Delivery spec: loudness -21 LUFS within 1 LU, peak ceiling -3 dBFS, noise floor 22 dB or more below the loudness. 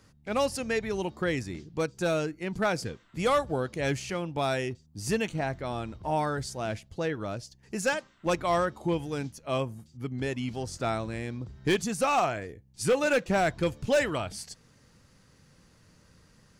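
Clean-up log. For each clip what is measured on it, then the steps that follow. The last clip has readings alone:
clipped 0.5%; flat tops at -18.0 dBFS; loudness -30.0 LUFS; peak -18.0 dBFS; loudness target -21.0 LUFS
-> clip repair -18 dBFS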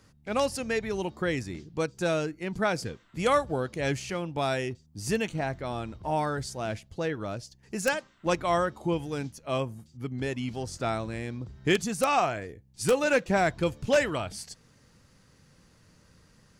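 clipped 0.0%; loudness -29.5 LUFS; peak -9.0 dBFS; loudness target -21.0 LUFS
-> gain +8.5 dB; limiter -3 dBFS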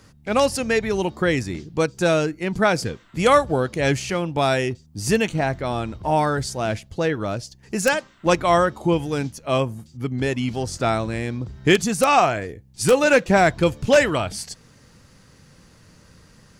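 loudness -21.5 LUFS; peak -3.0 dBFS; noise floor -53 dBFS

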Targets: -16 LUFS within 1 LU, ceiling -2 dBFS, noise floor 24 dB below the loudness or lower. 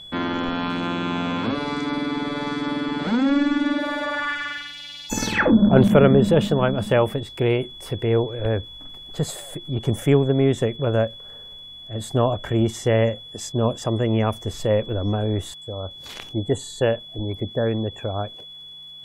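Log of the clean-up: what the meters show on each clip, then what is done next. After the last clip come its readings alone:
ticks 30/s; steady tone 3400 Hz; tone level -38 dBFS; loudness -22.5 LUFS; peak -4.0 dBFS; loudness target -16.0 LUFS
-> de-click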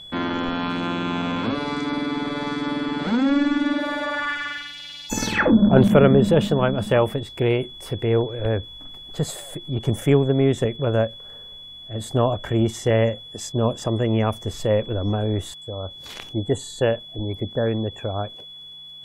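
ticks 0/s; steady tone 3400 Hz; tone level -38 dBFS
-> notch 3400 Hz, Q 30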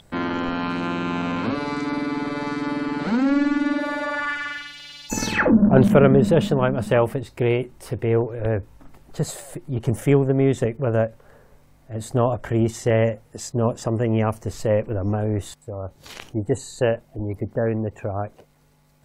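steady tone none; loudness -22.5 LUFS; peak -4.0 dBFS; loudness target -16.0 LUFS
-> gain +6.5 dB; limiter -2 dBFS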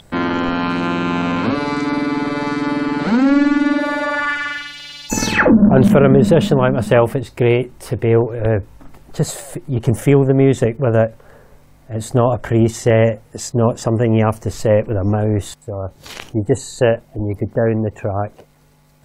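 loudness -16.5 LUFS; peak -2.0 dBFS; noise floor -49 dBFS

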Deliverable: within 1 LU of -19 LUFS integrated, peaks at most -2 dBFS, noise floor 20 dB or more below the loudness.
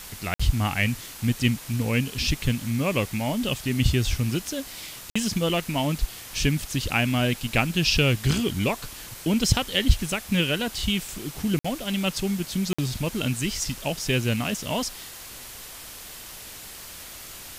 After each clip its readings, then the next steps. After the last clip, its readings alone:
dropouts 4; longest dropout 55 ms; noise floor -41 dBFS; noise floor target -46 dBFS; loudness -25.5 LUFS; peak -5.5 dBFS; loudness target -19.0 LUFS
-> interpolate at 0.34/5.1/11.59/12.73, 55 ms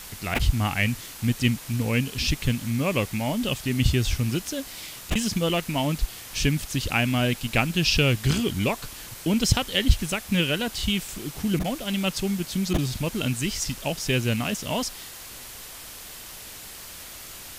dropouts 0; noise floor -41 dBFS; noise floor target -46 dBFS
-> denoiser 6 dB, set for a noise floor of -41 dBFS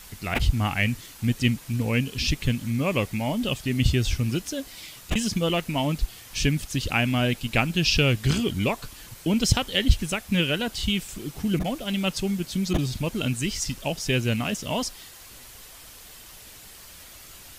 noise floor -46 dBFS; loudness -25.5 LUFS; peak -5.5 dBFS; loudness target -19.0 LUFS
-> gain +6.5 dB; limiter -2 dBFS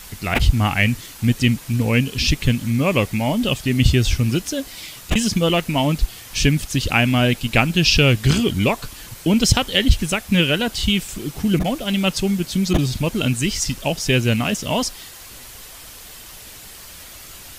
loudness -19.0 LUFS; peak -2.0 dBFS; noise floor -40 dBFS

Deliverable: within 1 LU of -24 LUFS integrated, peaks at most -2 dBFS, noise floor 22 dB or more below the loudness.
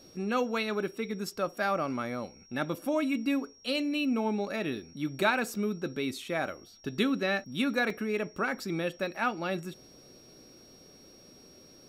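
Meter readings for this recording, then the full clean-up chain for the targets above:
dropouts 1; longest dropout 3.0 ms; steady tone 5600 Hz; tone level -56 dBFS; loudness -31.5 LUFS; peak -14.0 dBFS; loudness target -24.0 LUFS
-> interpolate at 7.9, 3 ms; notch 5600 Hz, Q 30; gain +7.5 dB

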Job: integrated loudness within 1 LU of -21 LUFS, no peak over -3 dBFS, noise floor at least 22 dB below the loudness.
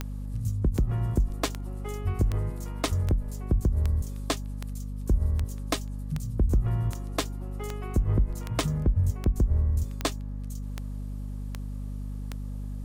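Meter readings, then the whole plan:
clicks 17; hum 50 Hz; harmonics up to 250 Hz; hum level -30 dBFS; loudness -30.0 LUFS; peak -13.5 dBFS; loudness target -21.0 LUFS
-> de-click; de-hum 50 Hz, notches 5; gain +9 dB

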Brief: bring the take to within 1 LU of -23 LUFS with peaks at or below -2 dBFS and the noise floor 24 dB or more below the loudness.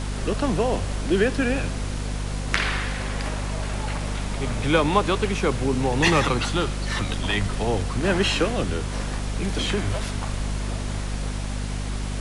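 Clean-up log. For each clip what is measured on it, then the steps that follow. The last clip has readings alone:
hum 50 Hz; harmonics up to 250 Hz; hum level -26 dBFS; noise floor -29 dBFS; noise floor target -49 dBFS; loudness -25.0 LUFS; peak -2.0 dBFS; loudness target -23.0 LUFS
-> de-hum 50 Hz, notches 5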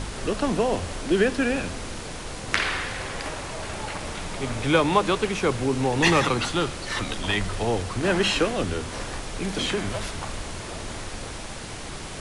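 hum none; noise floor -36 dBFS; noise floor target -50 dBFS
-> noise print and reduce 14 dB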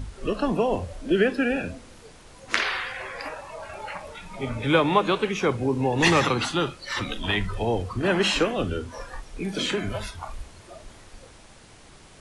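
noise floor -49 dBFS; loudness -25.0 LUFS; peak -3.0 dBFS; loudness target -23.0 LUFS
-> gain +2 dB; limiter -2 dBFS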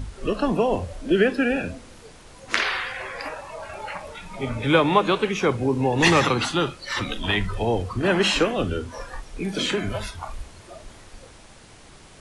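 loudness -23.0 LUFS; peak -2.0 dBFS; noise floor -47 dBFS

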